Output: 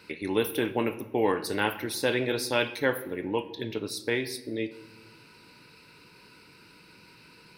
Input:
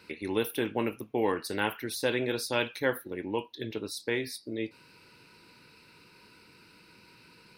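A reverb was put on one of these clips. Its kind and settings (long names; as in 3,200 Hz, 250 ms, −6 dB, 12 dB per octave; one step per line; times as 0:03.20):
rectangular room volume 610 cubic metres, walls mixed, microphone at 0.35 metres
level +2.5 dB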